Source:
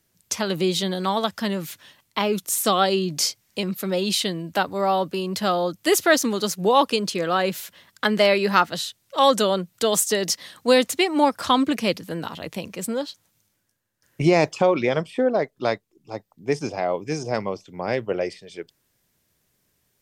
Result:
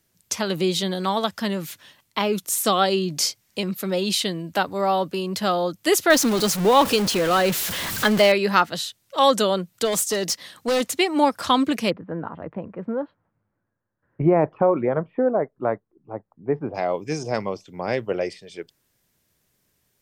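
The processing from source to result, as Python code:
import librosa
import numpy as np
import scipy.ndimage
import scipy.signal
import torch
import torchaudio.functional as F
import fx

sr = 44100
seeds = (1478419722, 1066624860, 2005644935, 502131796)

y = fx.zero_step(x, sr, step_db=-22.5, at=(6.1, 8.32))
y = fx.clip_hard(y, sr, threshold_db=-18.0, at=(9.84, 10.8), fade=0.02)
y = fx.lowpass(y, sr, hz=1500.0, slope=24, at=(11.89, 16.74), fade=0.02)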